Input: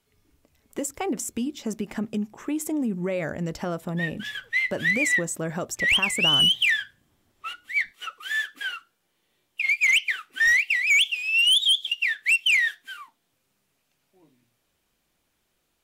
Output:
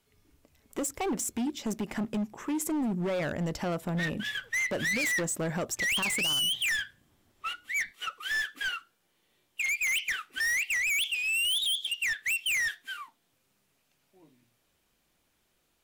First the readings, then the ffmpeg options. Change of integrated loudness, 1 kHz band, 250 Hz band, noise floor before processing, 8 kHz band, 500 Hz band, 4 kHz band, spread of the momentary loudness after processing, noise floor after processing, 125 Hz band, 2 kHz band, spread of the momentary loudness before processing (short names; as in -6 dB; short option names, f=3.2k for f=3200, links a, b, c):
-6.5 dB, -2.0 dB, -3.0 dB, -74 dBFS, -0.5 dB, -3.0 dB, -8.5 dB, 9 LU, -74 dBFS, -2.5 dB, -7.0 dB, 15 LU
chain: -af "asoftclip=type=hard:threshold=-27dB"